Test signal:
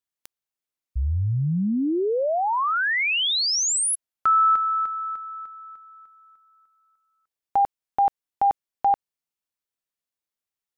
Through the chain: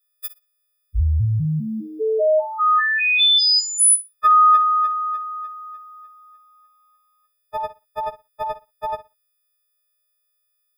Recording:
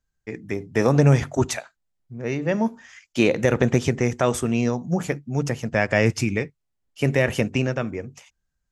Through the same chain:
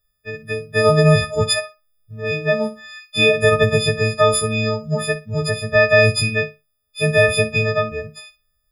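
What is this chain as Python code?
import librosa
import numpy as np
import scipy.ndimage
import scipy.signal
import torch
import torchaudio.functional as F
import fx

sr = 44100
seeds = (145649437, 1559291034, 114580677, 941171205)

p1 = fx.freq_snap(x, sr, grid_st=6)
p2 = fx.low_shelf(p1, sr, hz=61.0, db=7.5)
p3 = fx.fixed_phaser(p2, sr, hz=1400.0, stages=8)
p4 = p3 + fx.room_flutter(p3, sr, wall_m=10.2, rt60_s=0.23, dry=0)
y = p4 * 10.0 ** (5.0 / 20.0)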